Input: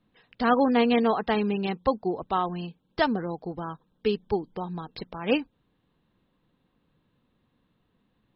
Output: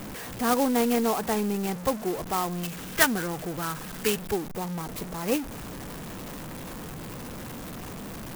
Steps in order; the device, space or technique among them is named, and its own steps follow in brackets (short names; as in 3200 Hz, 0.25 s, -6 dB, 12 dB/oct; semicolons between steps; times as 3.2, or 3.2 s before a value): 2.63–4.33 band shelf 2200 Hz +12.5 dB; early CD player with a faulty converter (zero-crossing step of -28.5 dBFS; clock jitter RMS 0.068 ms); gain -3.5 dB